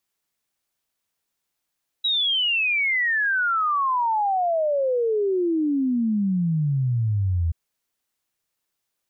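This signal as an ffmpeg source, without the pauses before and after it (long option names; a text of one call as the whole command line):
ffmpeg -f lavfi -i "aevalsrc='0.112*clip(min(t,5.48-t)/0.01,0,1)*sin(2*PI*3900*5.48/log(80/3900)*(exp(log(80/3900)*t/5.48)-1))':duration=5.48:sample_rate=44100" out.wav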